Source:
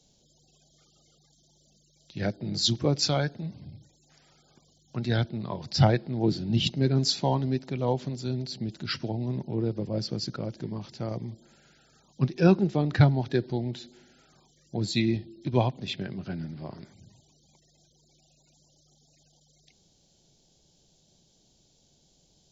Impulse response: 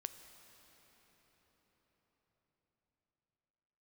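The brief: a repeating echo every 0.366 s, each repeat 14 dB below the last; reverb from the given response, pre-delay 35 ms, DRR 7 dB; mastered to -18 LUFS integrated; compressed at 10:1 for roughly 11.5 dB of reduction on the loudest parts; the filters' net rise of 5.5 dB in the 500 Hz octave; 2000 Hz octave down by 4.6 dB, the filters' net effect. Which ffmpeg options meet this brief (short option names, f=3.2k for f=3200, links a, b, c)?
-filter_complex "[0:a]equalizer=f=500:t=o:g=7.5,equalizer=f=2k:t=o:g=-7,acompressor=threshold=-24dB:ratio=10,aecho=1:1:366|732:0.2|0.0399,asplit=2[a][b];[1:a]atrim=start_sample=2205,adelay=35[c];[b][c]afir=irnorm=-1:irlink=0,volume=-4dB[d];[a][d]amix=inputs=2:normalize=0,volume=13dB"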